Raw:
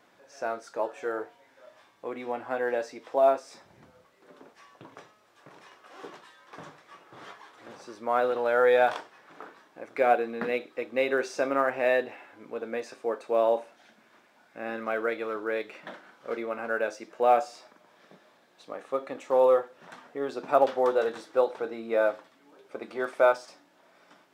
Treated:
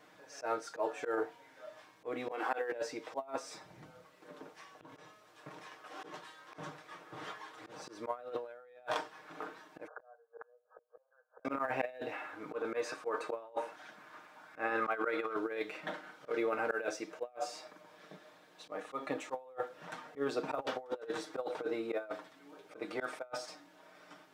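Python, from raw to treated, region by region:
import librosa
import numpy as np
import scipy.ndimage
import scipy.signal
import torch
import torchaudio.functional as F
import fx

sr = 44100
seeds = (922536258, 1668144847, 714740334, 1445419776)

y = fx.chain(x, sr, fx.highpass(hz=320.0, slope=24),
    fx.peak_eq(hz=620.0, db=-12.0, octaves=0.25),
    fx.pre_swell(db_per_s=57.0), at=(2.31, 2.72))
y = fx.chain(y, sr, fx.brickwall_bandpass(low_hz=450.0, high_hz=1700.0),
    fx.gate_flip(shuts_db=-30.0, range_db=-38), at=(9.87, 11.45))
y = fx.chain(y, sr, fx.peak_eq(hz=1200.0, db=8.5, octaves=1.1),
    fx.echo_single(ms=117, db=-23.5), at=(12.13, 15.36))
y = y + 0.6 * np.pad(y, (int(6.5 * sr / 1000.0), 0))[:len(y)]
y = fx.auto_swell(y, sr, attack_ms=115.0)
y = fx.over_compress(y, sr, threshold_db=-31.0, ratio=-0.5)
y = y * librosa.db_to_amplitude(-5.5)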